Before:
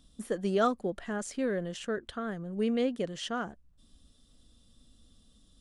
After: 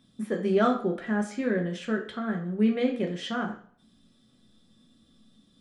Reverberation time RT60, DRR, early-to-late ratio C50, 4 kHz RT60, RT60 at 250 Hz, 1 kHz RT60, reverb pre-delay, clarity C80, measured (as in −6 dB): 0.50 s, 1.0 dB, 10.0 dB, 0.45 s, 0.60 s, 0.50 s, 3 ms, 13.0 dB